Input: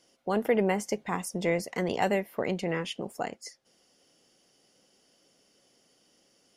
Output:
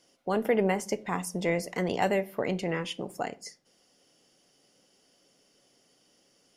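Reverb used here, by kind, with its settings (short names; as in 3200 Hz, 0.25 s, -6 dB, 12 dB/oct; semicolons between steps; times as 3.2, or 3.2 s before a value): shoebox room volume 300 m³, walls furnished, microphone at 0.32 m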